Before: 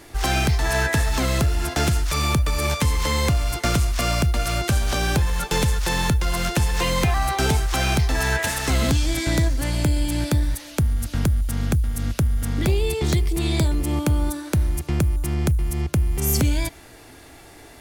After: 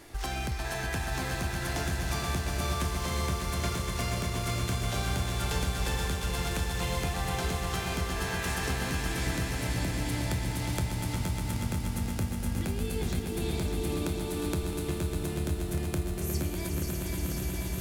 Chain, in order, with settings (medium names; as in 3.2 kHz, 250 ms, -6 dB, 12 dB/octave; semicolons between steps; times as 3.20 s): backward echo that repeats 248 ms, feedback 83%, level -9.5 dB; compression, threshold -25 dBFS, peak gain reduction 11.5 dB; on a send: echo with a slow build-up 120 ms, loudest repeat 5, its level -8.5 dB; on the sum: trim -6 dB